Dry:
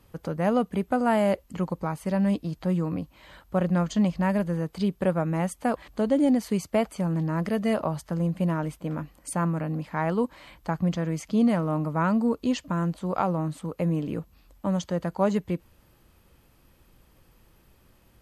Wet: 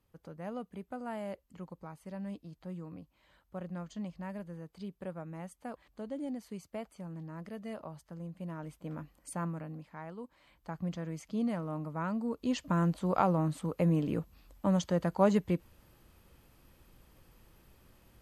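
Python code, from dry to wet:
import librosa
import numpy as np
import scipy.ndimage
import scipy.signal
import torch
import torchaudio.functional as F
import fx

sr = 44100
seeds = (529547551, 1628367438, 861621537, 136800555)

y = fx.gain(x, sr, db=fx.line((8.38, -17.0), (8.89, -10.0), (9.44, -10.0), (10.17, -20.0), (10.85, -11.0), (12.27, -11.0), (12.72, -2.0)))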